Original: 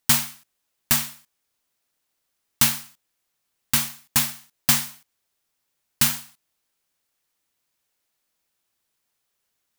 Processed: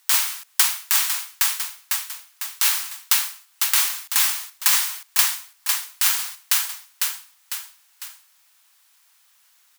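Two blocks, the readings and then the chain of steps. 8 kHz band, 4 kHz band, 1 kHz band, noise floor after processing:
+5.0 dB, +5.0 dB, +3.5 dB, -59 dBFS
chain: high-pass 870 Hz 24 dB/octave; feedback delay 501 ms, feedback 47%, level -14.5 dB; compression 6:1, threshold -29 dBFS, peak gain reduction 15 dB; loudness maximiser +18.5 dB; trim -1 dB

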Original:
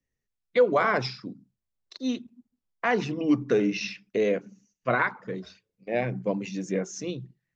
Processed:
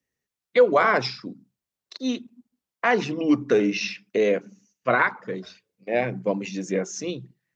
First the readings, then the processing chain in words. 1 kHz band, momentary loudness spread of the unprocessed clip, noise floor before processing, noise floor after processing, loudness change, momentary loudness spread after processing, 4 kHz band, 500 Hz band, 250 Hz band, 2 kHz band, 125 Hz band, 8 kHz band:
+4.5 dB, 14 LU, -85 dBFS, under -85 dBFS, +3.5 dB, 15 LU, +4.5 dB, +3.5 dB, +2.0 dB, +4.5 dB, -0.5 dB, no reading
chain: high-pass 220 Hz 6 dB/octave; trim +4.5 dB

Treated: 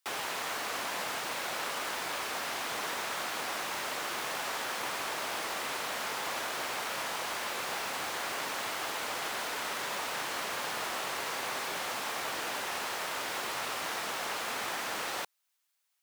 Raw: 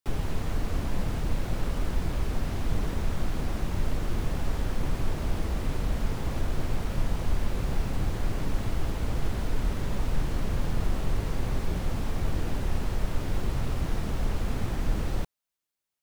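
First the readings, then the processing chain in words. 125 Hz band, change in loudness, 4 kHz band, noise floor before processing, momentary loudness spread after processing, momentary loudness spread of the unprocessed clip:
-27.5 dB, -2.0 dB, +8.5 dB, -85 dBFS, 0 LU, 1 LU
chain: high-pass 900 Hz 12 dB/octave; trim +8.5 dB

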